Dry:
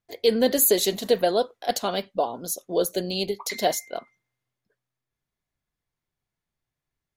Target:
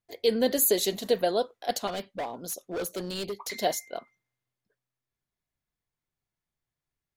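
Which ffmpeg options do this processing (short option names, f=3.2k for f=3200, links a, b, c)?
-filter_complex "[0:a]asettb=1/sr,asplit=3[a][b][c];[a]atrim=end=1.874[d];[b]atrim=start=1.87:end=3.58,asetpts=PTS-STARTPTS,afade=t=in:d=0.004:c=qsin,afade=t=out:st=1.706:d=0.004:c=qsin,asoftclip=type=hard:threshold=-25dB[e];[c]atrim=start=3.576[f];[d][e]acrossfade=d=0.004:c1=hsin:c2=qsin[g];[g][f]acrossfade=d=0.004:c1=qsin:c2=hsin,volume=-4dB"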